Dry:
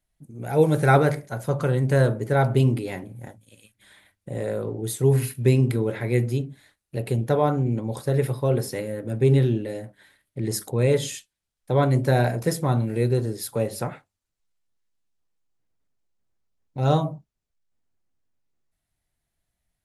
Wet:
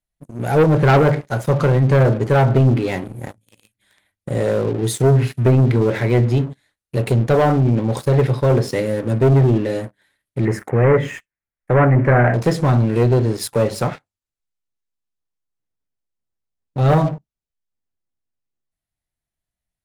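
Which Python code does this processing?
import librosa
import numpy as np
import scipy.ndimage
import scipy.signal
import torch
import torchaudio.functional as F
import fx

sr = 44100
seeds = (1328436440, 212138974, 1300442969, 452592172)

y = fx.env_lowpass_down(x, sr, base_hz=1700.0, full_db=-14.5)
y = fx.leveller(y, sr, passes=3)
y = fx.high_shelf_res(y, sr, hz=2800.0, db=-12.0, q=3.0, at=(10.45, 12.34))
y = F.gain(torch.from_numpy(y), -1.5).numpy()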